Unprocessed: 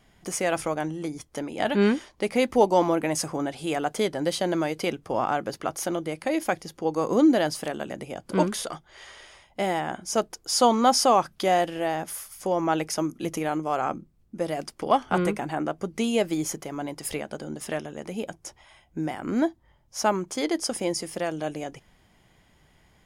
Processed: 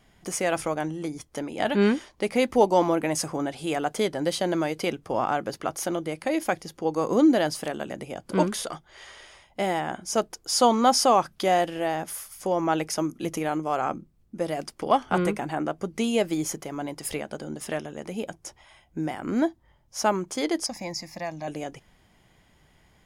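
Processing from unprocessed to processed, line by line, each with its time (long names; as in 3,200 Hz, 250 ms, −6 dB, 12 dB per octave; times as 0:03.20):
0:20.66–0:21.48: phaser with its sweep stopped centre 2,100 Hz, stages 8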